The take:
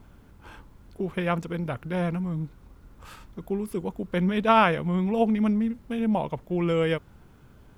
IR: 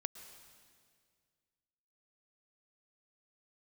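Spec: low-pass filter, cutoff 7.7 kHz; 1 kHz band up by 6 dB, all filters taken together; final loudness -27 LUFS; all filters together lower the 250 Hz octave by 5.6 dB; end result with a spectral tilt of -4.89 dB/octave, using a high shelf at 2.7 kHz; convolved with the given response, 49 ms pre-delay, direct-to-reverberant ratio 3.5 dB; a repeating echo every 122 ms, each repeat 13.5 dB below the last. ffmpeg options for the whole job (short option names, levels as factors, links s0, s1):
-filter_complex "[0:a]lowpass=7700,equalizer=f=250:t=o:g=-8.5,equalizer=f=1000:t=o:g=9,highshelf=f=2700:g=-5.5,aecho=1:1:122|244:0.211|0.0444,asplit=2[s0][s1];[1:a]atrim=start_sample=2205,adelay=49[s2];[s1][s2]afir=irnorm=-1:irlink=0,volume=0.841[s3];[s0][s3]amix=inputs=2:normalize=0,volume=0.631"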